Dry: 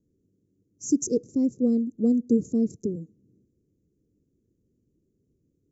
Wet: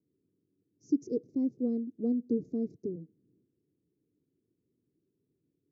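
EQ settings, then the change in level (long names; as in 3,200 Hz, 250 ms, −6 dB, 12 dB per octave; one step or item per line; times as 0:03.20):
high-frequency loss of the air 250 metres
loudspeaker in its box 160–5,500 Hz, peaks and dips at 210 Hz −7 dB, 530 Hz −5 dB, 1,300 Hz −8 dB, 2,700 Hz −8 dB
−3.5 dB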